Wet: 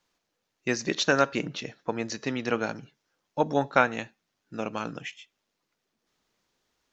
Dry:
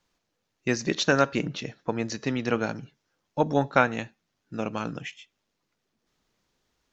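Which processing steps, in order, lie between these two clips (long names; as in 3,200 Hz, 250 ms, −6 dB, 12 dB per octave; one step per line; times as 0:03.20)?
low-shelf EQ 190 Hz −8 dB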